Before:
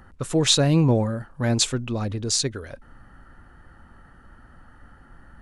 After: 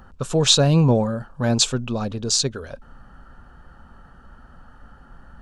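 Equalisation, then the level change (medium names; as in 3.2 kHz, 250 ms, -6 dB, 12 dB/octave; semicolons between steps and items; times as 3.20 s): graphic EQ with 31 bands 100 Hz -9 dB, 315 Hz -8 dB, 2 kHz -12 dB, 10 kHz -11 dB; +4.0 dB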